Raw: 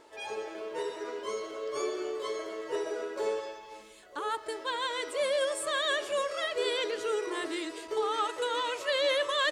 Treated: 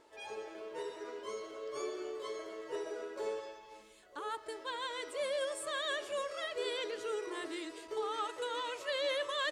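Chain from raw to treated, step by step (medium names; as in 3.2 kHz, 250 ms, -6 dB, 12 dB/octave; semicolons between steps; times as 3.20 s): bass shelf 160 Hz +3 dB; trim -7 dB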